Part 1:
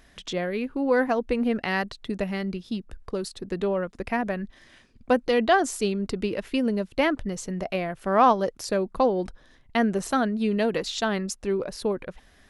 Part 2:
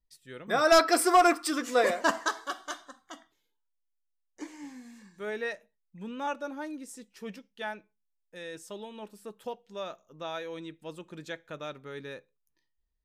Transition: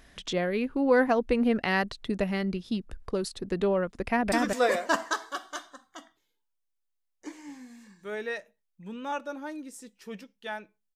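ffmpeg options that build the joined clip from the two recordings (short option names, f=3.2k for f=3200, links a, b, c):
-filter_complex "[0:a]apad=whole_dur=10.95,atrim=end=10.95,atrim=end=4.322[a];[1:a]atrim=start=1.468:end=8.1[b];[a][b]acrossfade=d=0.004:c1=hsin:c2=hsin,asplit=2[c][d];[d]afade=t=in:st=4.03:d=0.01,afade=t=out:st=4.32:d=0.01,aecho=0:1:210|420:0.841395|0.0841395[e];[c][e]amix=inputs=2:normalize=0"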